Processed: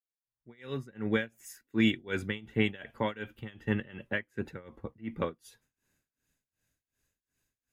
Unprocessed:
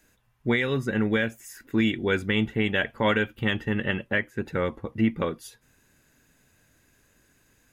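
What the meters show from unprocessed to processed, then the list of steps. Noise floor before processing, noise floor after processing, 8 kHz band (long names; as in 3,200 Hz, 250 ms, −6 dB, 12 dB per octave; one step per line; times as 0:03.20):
−65 dBFS, below −85 dBFS, can't be measured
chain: fade in at the beginning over 1.27 s
amplitude tremolo 2.7 Hz, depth 93%
multiband upward and downward expander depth 40%
level −3.5 dB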